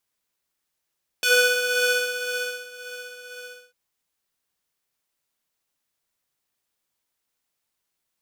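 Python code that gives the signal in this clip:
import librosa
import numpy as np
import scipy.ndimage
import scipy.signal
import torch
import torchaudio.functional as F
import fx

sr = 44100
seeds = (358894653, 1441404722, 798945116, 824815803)

y = fx.sub_patch_tremolo(sr, seeds[0], note=71, wave='square', wave2='saw', interval_st=19, detune_cents=20, level2_db=-9.0, sub_db=-21.0, noise_db=-29, kind='highpass', cutoff_hz=760.0, q=0.93, env_oct=2.0, env_decay_s=0.08, env_sustain_pct=10, attack_ms=1.8, decay_s=1.46, sustain_db=-20, release_s=0.4, note_s=2.1, lfo_hz=1.9, tremolo_db=6)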